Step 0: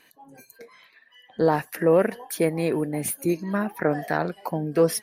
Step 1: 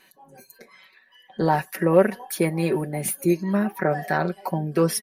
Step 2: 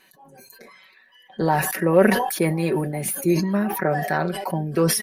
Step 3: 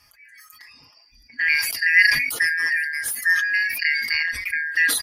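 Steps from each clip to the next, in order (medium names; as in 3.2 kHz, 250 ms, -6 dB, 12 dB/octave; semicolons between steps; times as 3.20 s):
comb 5.3 ms, depth 72%
decay stretcher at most 48 dB/s
four frequency bands reordered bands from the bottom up 3142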